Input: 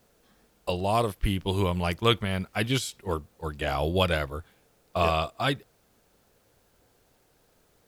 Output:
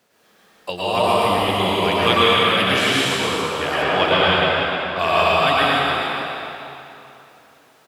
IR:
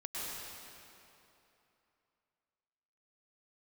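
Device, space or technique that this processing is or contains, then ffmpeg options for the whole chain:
PA in a hall: -filter_complex "[0:a]highpass=150,equalizer=f=2.2k:t=o:w=2.8:g=7.5,aecho=1:1:110:0.562[a];[1:a]atrim=start_sample=2205[b];[a][b]afir=irnorm=-1:irlink=0,asettb=1/sr,asplit=3[c][d][e];[c]atrim=end=3.824[f];[d]atrim=start=3.82:end=4.99,asetpts=PTS-STARTPTS,afade=t=in:d=0.004:c=qsin,afade=t=out:st=1.166:d=0.004:c=qsin,lowpass=5.2k[g];[e]atrim=start=4.986[h];[f][g]acrossfade=d=0.004:c1=hsin:c2=qsin[i];[i][h]acrossfade=d=0.004:c1=qsin:c2=hsin,asplit=5[j][k][l][m][n];[k]adelay=295,afreqshift=88,volume=-9dB[o];[l]adelay=590,afreqshift=176,volume=-18.6dB[p];[m]adelay=885,afreqshift=264,volume=-28.3dB[q];[n]adelay=1180,afreqshift=352,volume=-37.9dB[r];[j][o][p][q][r]amix=inputs=5:normalize=0,volume=3.5dB"

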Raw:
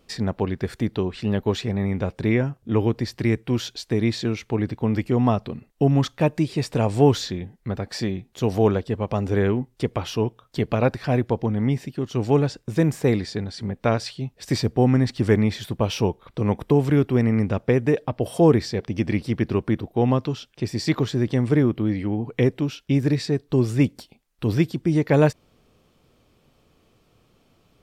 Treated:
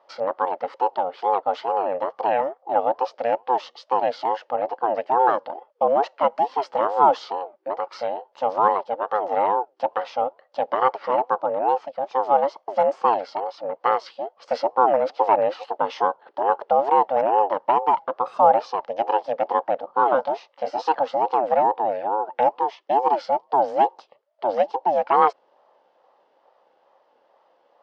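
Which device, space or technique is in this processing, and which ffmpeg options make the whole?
voice changer toy: -filter_complex "[0:a]asettb=1/sr,asplit=3[a][b][c];[a]atrim=end=19.864[d];[b]atrim=start=19.86:end=20.82,asetpts=PTS-STARTPTS,afade=t=in:d=0.004:c=qsin,afade=t=out:st=0.956:d=0.004:c=qsin,asplit=2[e][f];[f]adelay=22,volume=-4dB[g];[e][g]amix=inputs=2:normalize=0,atrim=end_sample=42336[h];[c]atrim=start=20.816[i];[d][h]acrossfade=d=0.004:c1=hsin:c2=qsin[j];[j][i]acrossfade=d=0.004:c1=qsin:c2=hsin,aeval=exprs='val(0)*sin(2*PI*500*n/s+500*0.3/2.3*sin(2*PI*2.3*n/s))':c=same,highpass=500,equalizer=f=540:t=q:w=4:g=9,equalizer=f=860:t=q:w=4:g=8,equalizer=f=1.2k:t=q:w=4:g=4,equalizer=f=2.4k:t=q:w=4:g=-6,equalizer=f=3.8k:t=q:w=4:g=-7,lowpass=f=4.4k:w=0.5412,lowpass=f=4.4k:w=1.3066"

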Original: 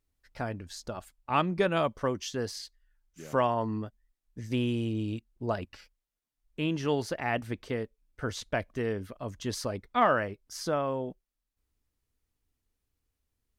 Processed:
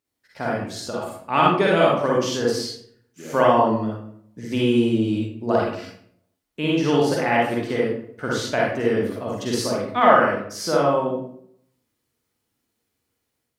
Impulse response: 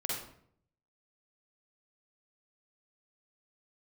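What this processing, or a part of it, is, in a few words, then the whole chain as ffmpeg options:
far laptop microphone: -filter_complex "[1:a]atrim=start_sample=2205[a];[0:a][a]afir=irnorm=-1:irlink=0,highpass=160,dynaudnorm=f=220:g=3:m=5dB,volume=2dB"

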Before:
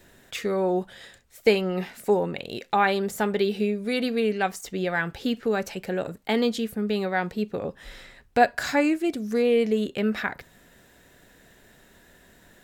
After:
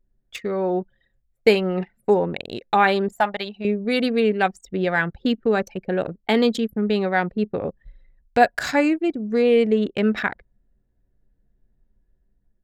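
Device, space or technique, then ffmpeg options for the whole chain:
voice memo with heavy noise removal: -filter_complex "[0:a]asettb=1/sr,asplit=3[a][b][c];[a]atrim=end=3.124[d];[b]atrim=start=3.12:end=3.65,asetpts=PTS-STARTPTS,afade=t=in:d=0.004:c=qsin,afade=t=out:st=0.526:d=0.004:c=qsin,lowshelf=f=530:t=q:w=3:g=-8.5[e];[c]atrim=start=3.646[f];[d][e]acrossfade=d=0.004:c1=hsin:c2=qsin[g];[g][f]acrossfade=d=0.004:c1=qsin:c2=hsin,anlmdn=15.8,dynaudnorm=f=330:g=5:m=5dB"

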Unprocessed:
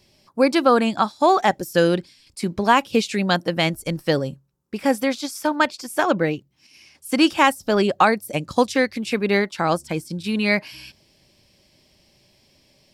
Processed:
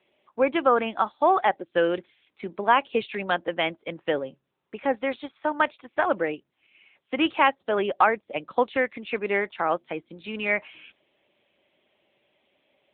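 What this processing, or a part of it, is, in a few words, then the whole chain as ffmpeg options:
telephone: -af "highpass=380,lowpass=3.5k,volume=-2.5dB" -ar 8000 -c:a libopencore_amrnb -b:a 10200

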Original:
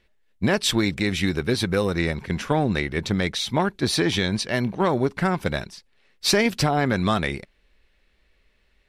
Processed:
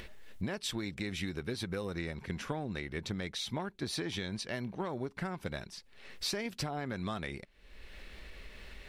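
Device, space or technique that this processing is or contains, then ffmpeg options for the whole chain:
upward and downward compression: -af "acompressor=mode=upward:threshold=-35dB:ratio=2.5,acompressor=threshold=-38dB:ratio=4,volume=1dB"

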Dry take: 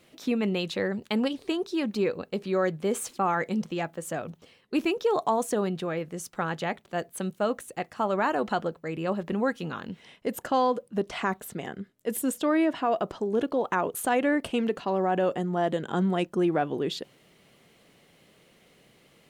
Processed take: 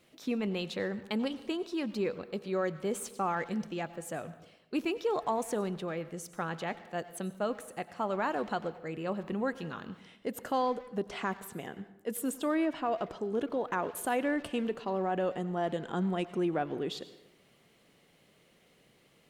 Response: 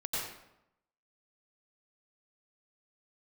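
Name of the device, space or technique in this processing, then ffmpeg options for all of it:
saturated reverb return: -filter_complex "[0:a]asplit=2[a][b];[1:a]atrim=start_sample=2205[c];[b][c]afir=irnorm=-1:irlink=0,asoftclip=type=tanh:threshold=-23.5dB,volume=-15dB[d];[a][d]amix=inputs=2:normalize=0,volume=-6.5dB"

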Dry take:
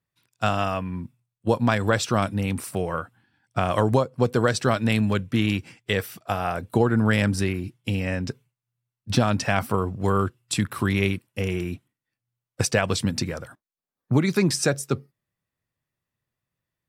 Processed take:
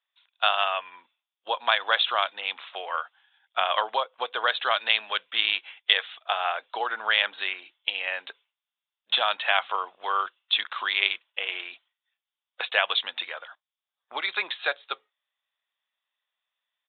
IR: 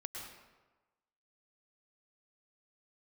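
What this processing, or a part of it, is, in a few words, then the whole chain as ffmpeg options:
musical greeting card: -af "aresample=8000,aresample=44100,highpass=f=720:w=0.5412,highpass=f=720:w=1.3066,equalizer=f=3.5k:t=o:w=0.55:g=12,volume=1.5dB"

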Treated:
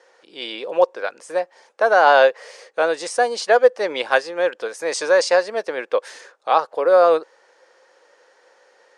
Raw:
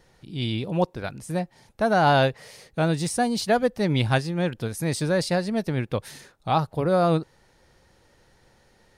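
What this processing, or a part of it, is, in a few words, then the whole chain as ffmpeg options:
phone speaker on a table: -filter_complex "[0:a]highpass=f=420:w=0.5412,highpass=f=420:w=1.3066,equalizer=f=510:t=q:w=4:g=8,equalizer=f=1.1k:t=q:w=4:g=5,equalizer=f=1.6k:t=q:w=4:g=5,equalizer=f=3.9k:t=q:w=4:g=-4,lowpass=f=8k:w=0.5412,lowpass=f=8k:w=1.3066,asettb=1/sr,asplit=3[a][b][c];[a]atrim=end=4.924[d];[b]atrim=start=4.92:end=5.43,asetpts=PTS-STARTPTS,afade=t=in:d=0.004:c=qsin,afade=t=out:st=0.506:d=0.004:c=qsin,equalizer=f=1k:t=o:w=0.67:g=4,equalizer=f=2.5k:t=o:w=0.67:g=3,equalizer=f=6.3k:t=o:w=0.67:g=7[e];[c]atrim=start=5.426[f];[d][e]acrossfade=d=0.004:c1=hsin:c2=qsin[g];[g][f]acrossfade=d=0.004:c1=qsin:c2=hsin,volume=4dB"

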